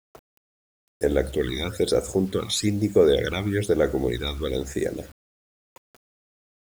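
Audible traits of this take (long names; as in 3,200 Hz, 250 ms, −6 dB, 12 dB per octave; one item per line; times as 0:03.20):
phaser sweep stages 12, 1.1 Hz, lowest notch 480–4,200 Hz
a quantiser's noise floor 8 bits, dither none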